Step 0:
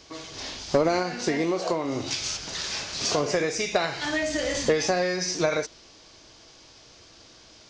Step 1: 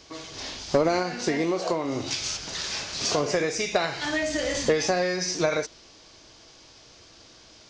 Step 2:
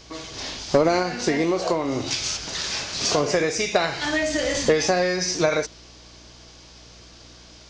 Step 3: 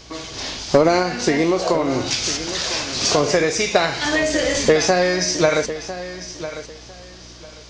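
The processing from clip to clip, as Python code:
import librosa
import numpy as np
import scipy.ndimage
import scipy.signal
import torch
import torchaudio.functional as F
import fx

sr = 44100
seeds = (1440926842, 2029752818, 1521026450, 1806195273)

y1 = x
y2 = fx.add_hum(y1, sr, base_hz=60, snr_db=27)
y2 = F.gain(torch.from_numpy(y2), 3.5).numpy()
y3 = fx.echo_feedback(y2, sr, ms=1001, feedback_pct=22, wet_db=-13.0)
y3 = F.gain(torch.from_numpy(y3), 4.0).numpy()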